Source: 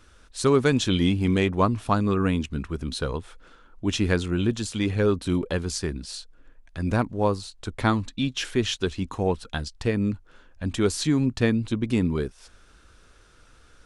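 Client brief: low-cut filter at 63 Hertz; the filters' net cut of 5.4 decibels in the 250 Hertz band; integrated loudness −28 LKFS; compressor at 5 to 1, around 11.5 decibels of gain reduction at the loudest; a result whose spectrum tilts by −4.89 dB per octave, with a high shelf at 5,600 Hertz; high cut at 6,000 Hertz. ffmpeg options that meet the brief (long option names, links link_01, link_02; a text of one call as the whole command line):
ffmpeg -i in.wav -af "highpass=63,lowpass=6000,equalizer=frequency=250:width_type=o:gain=-7,highshelf=frequency=5600:gain=-7,acompressor=threshold=-31dB:ratio=5,volume=8dB" out.wav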